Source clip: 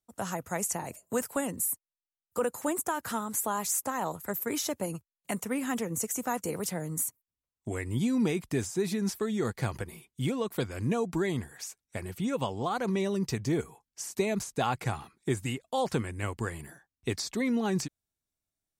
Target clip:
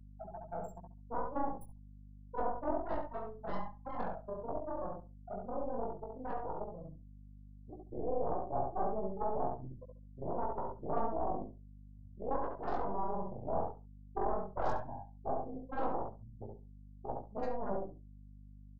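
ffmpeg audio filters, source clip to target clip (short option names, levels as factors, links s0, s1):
-filter_complex "[0:a]afftfilt=real='re':imag='-im':win_size=4096:overlap=0.75,afftfilt=real='re*gte(hypot(re,im),0.0794)':imag='im*gte(hypot(re,im),0.0794)':win_size=1024:overlap=0.75,acrossover=split=270|1600|2800[s0][s1][s2][s3];[s2]dynaudnorm=f=220:g=21:m=2.24[s4];[s0][s1][s4][s3]amix=inputs=4:normalize=0,aemphasis=mode=production:type=bsi,acrossover=split=410|3000[s5][s6][s7];[s5]acompressor=threshold=0.0112:ratio=5[s8];[s8][s6][s7]amix=inputs=3:normalize=0,aeval=exprs='0.0562*(cos(1*acos(clip(val(0)/0.0562,-1,1)))-cos(1*PI/2))+0.00316*(cos(3*acos(clip(val(0)/0.0562,-1,1)))-cos(3*PI/2))+0.0282*(cos(6*acos(clip(val(0)/0.0562,-1,1)))-cos(6*PI/2))+0.02*(cos(7*acos(clip(val(0)/0.0562,-1,1)))-cos(7*PI/2))':c=same,asplit=2[s9][s10];[s10]adelay=69,lowpass=f=1800:p=1,volume=0.708,asplit=2[s11][s12];[s12]adelay=69,lowpass=f=1800:p=1,volume=0.19,asplit=2[s13][s14];[s14]adelay=69,lowpass=f=1800:p=1,volume=0.19[s15];[s9][s11][s13][s15]amix=inputs=4:normalize=0,flanger=delay=15.5:depth=6.2:speed=0.11,firequalizer=gain_entry='entry(120,0);entry(650,11);entry(2300,-20);entry(5100,-11)':delay=0.05:min_phase=1,aeval=exprs='val(0)+0.00398*(sin(2*PI*50*n/s)+sin(2*PI*2*50*n/s)/2+sin(2*PI*3*50*n/s)/3+sin(2*PI*4*50*n/s)/4+sin(2*PI*5*50*n/s)/5)':c=same,volume=0.596"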